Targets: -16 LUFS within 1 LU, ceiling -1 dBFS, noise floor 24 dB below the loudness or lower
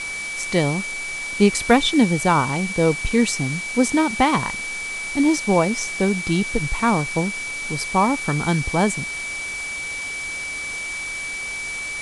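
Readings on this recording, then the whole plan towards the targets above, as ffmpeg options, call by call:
steady tone 2300 Hz; tone level -27 dBFS; noise floor -29 dBFS; noise floor target -45 dBFS; loudness -21.0 LUFS; peak -2.0 dBFS; loudness target -16.0 LUFS
-> -af "bandreject=f=2.3k:w=30"
-af "afftdn=nr=16:nf=-29"
-af "volume=5dB,alimiter=limit=-1dB:level=0:latency=1"

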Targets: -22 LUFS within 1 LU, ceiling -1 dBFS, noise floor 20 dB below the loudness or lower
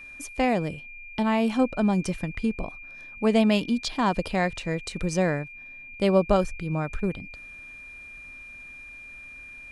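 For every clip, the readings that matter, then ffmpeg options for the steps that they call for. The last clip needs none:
steady tone 2400 Hz; tone level -41 dBFS; loudness -26.0 LUFS; peak -7.5 dBFS; loudness target -22.0 LUFS
-> -af "bandreject=f=2.4k:w=30"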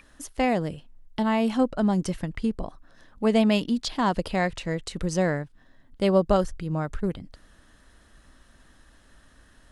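steady tone none; loudness -26.0 LUFS; peak -7.5 dBFS; loudness target -22.0 LUFS
-> -af "volume=4dB"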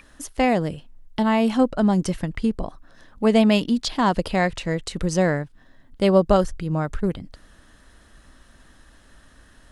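loudness -22.0 LUFS; peak -3.5 dBFS; noise floor -53 dBFS

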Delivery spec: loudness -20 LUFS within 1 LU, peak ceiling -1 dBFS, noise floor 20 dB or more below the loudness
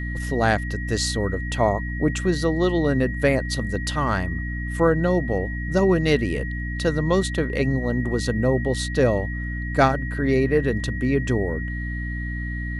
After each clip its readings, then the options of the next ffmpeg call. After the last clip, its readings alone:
hum 60 Hz; harmonics up to 300 Hz; hum level -26 dBFS; steady tone 1900 Hz; tone level -33 dBFS; loudness -23.0 LUFS; peak -3.5 dBFS; loudness target -20.0 LUFS
-> -af "bandreject=f=60:t=h:w=6,bandreject=f=120:t=h:w=6,bandreject=f=180:t=h:w=6,bandreject=f=240:t=h:w=6,bandreject=f=300:t=h:w=6"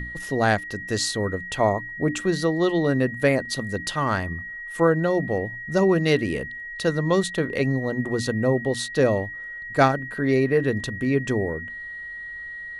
hum none; steady tone 1900 Hz; tone level -33 dBFS
-> -af "bandreject=f=1.9k:w=30"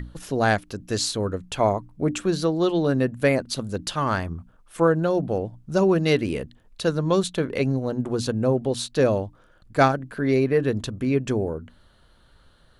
steady tone none; loudness -24.0 LUFS; peak -3.5 dBFS; loudness target -20.0 LUFS
-> -af "volume=4dB,alimiter=limit=-1dB:level=0:latency=1"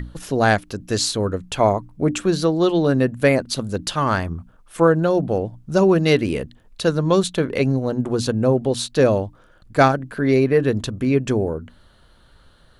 loudness -20.0 LUFS; peak -1.0 dBFS; noise floor -53 dBFS

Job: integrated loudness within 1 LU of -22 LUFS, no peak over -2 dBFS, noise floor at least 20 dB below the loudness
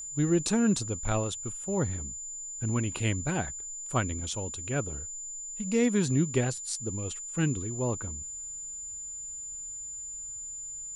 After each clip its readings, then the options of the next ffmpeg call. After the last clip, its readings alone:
steady tone 7100 Hz; tone level -37 dBFS; loudness -31.0 LUFS; peak -14.0 dBFS; loudness target -22.0 LUFS
-> -af "bandreject=f=7.1k:w=30"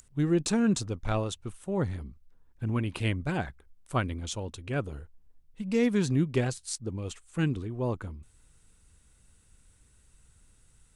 steady tone none; loudness -30.5 LUFS; peak -15.0 dBFS; loudness target -22.0 LUFS
-> -af "volume=8.5dB"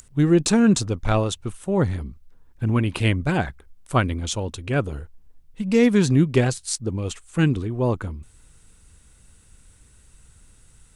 loudness -22.0 LUFS; peak -6.5 dBFS; noise floor -54 dBFS

